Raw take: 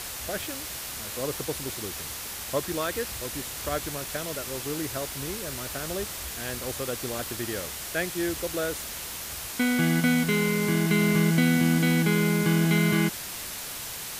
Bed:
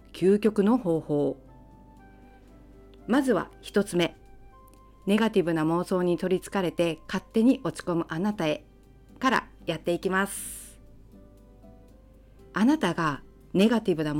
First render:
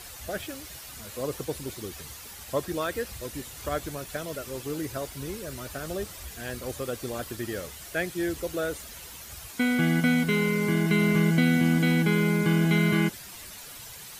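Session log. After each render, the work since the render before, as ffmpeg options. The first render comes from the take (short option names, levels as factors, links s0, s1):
-af "afftdn=nr=10:nf=-37"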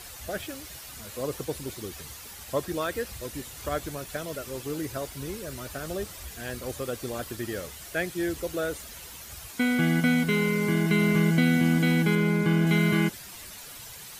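-filter_complex "[0:a]asettb=1/sr,asplit=3[s0][s1][s2];[s0]atrim=end=12.154[s3];[s1]atrim=start=12.15:end=12.67,asetpts=PTS-STARTPTS,afade=t=in:d=0.004:c=qsin,afade=t=out:st=0.516:d=0.004:c=qsin,highshelf=f=4400:g=-6.5[s4];[s2]atrim=start=12.666[s5];[s3][s4]acrossfade=d=0.004:c1=hsin:c2=qsin[s6];[s6][s5]acrossfade=d=0.004:c1=qsin:c2=hsin"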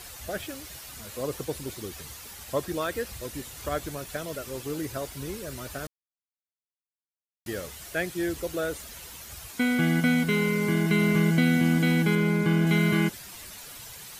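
-filter_complex "[0:a]asplit=3[s0][s1][s2];[s0]atrim=end=5.87,asetpts=PTS-STARTPTS,afade=t=out:st=5.866:d=0.004:c=hsin[s3];[s1]atrim=start=5.87:end=7.46,asetpts=PTS-STARTPTS,volume=0[s4];[s2]atrim=start=7.46,asetpts=PTS-STARTPTS,afade=t=in:d=0.004:c=hsin[s5];[s3][s4][s5]concat=n=3:v=0:a=1"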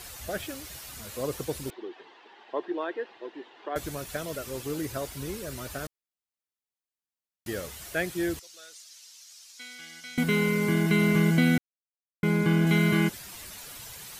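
-filter_complex "[0:a]asettb=1/sr,asplit=3[s0][s1][s2];[s0]atrim=end=1.704[s3];[s1]atrim=start=1.7:end=3.76,asetpts=PTS-STARTPTS,afade=t=in:d=0.004:c=qsin,afade=t=out:st=2.056:d=0.004:c=qsin,highpass=f=340:w=0.5412,highpass=f=340:w=1.3066,equalizer=f=350:t=q:w=4:g=6,equalizer=f=550:t=q:w=4:g=-7,equalizer=f=870:t=q:w=4:g=4,equalizer=f=1300:t=q:w=4:g=-8,equalizer=f=2300:t=q:w=4:g=-9,lowpass=f=2800:w=0.5412,lowpass=f=2800:w=1.3066[s4];[s2]atrim=start=3.756[s5];[s3][s4]acrossfade=d=0.004:c1=hsin:c2=qsin[s6];[s6][s5]acrossfade=d=0.004:c1=qsin:c2=hsin,asettb=1/sr,asplit=3[s7][s8][s9];[s7]atrim=end=8.394[s10];[s8]atrim=start=8.39:end=10.18,asetpts=PTS-STARTPTS,afade=t=in:d=0.004:c=qsin,afade=t=out:st=1.786:d=0.004:c=qsin,bandpass=f=5400:t=q:w=2.1[s11];[s9]atrim=start=10.176[s12];[s10][s11]acrossfade=d=0.004:c1=hsin:c2=qsin[s13];[s13][s12]acrossfade=d=0.004:c1=qsin:c2=hsin,asplit=3[s14][s15][s16];[s14]atrim=end=11.58,asetpts=PTS-STARTPTS,afade=t=out:st=11.576:d=0.004:c=hsin[s17];[s15]atrim=start=11.58:end=12.23,asetpts=PTS-STARTPTS,volume=0[s18];[s16]atrim=start=12.23,asetpts=PTS-STARTPTS,afade=t=in:d=0.004:c=hsin[s19];[s17][s18][s19]concat=n=3:v=0:a=1"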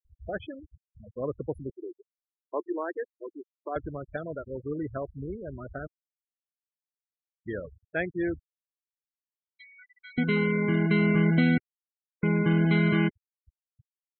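-af "afftfilt=real='re*gte(hypot(re,im),0.0316)':imag='im*gte(hypot(re,im),0.0316)':win_size=1024:overlap=0.75,highshelf=f=5700:g=-11.5"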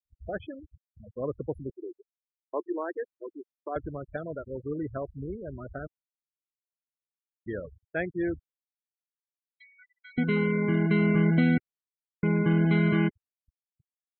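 -af "agate=range=0.0224:threshold=0.00282:ratio=3:detection=peak,highshelf=f=2900:g=-8"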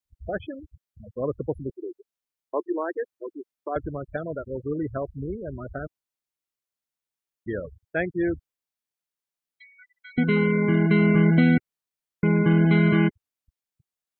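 -af "volume=1.68"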